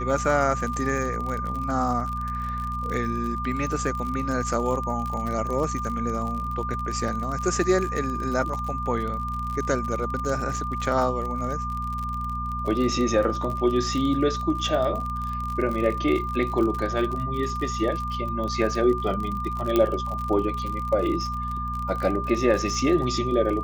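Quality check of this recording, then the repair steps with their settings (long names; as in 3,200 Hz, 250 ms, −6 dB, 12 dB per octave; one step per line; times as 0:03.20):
surface crackle 45 per second −29 dBFS
mains hum 60 Hz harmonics 4 −32 dBFS
whistle 1,200 Hz −29 dBFS
0:19.76: click −9 dBFS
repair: click removal
hum removal 60 Hz, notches 4
notch filter 1,200 Hz, Q 30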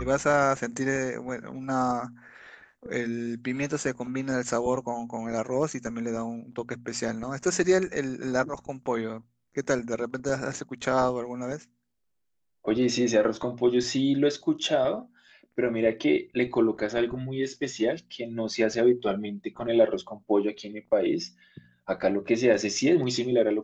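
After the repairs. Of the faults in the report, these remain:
none of them is left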